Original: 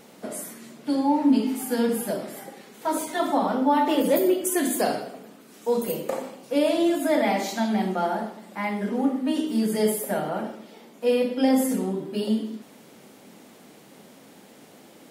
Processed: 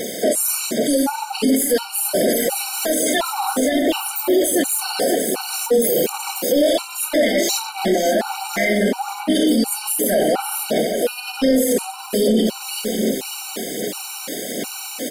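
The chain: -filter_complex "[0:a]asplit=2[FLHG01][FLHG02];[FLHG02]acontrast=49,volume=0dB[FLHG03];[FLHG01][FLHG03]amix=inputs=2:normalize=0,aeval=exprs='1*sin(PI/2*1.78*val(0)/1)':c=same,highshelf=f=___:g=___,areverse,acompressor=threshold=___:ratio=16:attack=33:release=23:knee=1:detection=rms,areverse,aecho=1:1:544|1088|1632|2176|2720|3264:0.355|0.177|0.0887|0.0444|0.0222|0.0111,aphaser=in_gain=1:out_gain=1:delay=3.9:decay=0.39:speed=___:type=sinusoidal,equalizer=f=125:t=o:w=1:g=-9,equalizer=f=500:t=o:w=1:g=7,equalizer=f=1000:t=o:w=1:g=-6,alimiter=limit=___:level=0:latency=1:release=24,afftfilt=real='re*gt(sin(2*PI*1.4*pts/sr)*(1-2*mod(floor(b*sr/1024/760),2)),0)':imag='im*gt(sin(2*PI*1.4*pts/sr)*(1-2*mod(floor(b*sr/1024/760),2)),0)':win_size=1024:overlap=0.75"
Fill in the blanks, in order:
2400, 11.5, -16dB, 1.3, -8dB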